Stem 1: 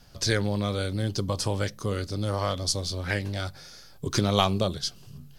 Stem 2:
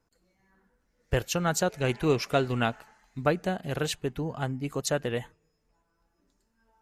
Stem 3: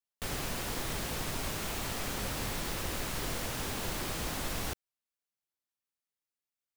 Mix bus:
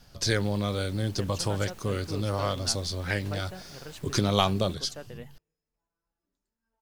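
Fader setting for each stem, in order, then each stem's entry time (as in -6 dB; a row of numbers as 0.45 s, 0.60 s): -1.0 dB, -14.5 dB, -17.0 dB; 0.00 s, 0.05 s, 0.00 s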